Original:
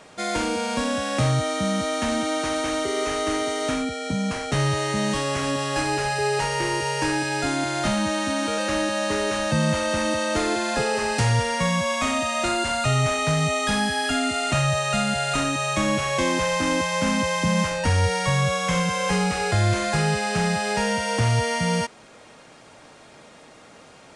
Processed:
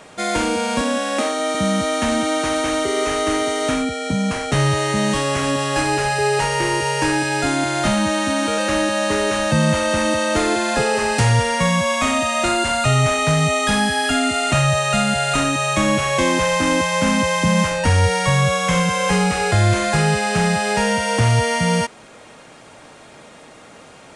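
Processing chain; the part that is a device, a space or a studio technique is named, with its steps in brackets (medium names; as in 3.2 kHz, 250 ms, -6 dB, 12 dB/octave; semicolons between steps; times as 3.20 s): 0.81–1.55 s: elliptic high-pass 220 Hz, stop band 40 dB; exciter from parts (in parallel at -10 dB: high-pass 4.6 kHz 24 dB/octave + saturation -25 dBFS, distortion -24 dB); on the sum: trim +5 dB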